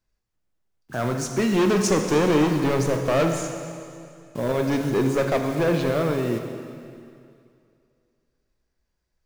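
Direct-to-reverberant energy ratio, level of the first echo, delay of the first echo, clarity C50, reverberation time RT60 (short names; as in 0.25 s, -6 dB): 4.0 dB, none, none, 5.5 dB, 2.4 s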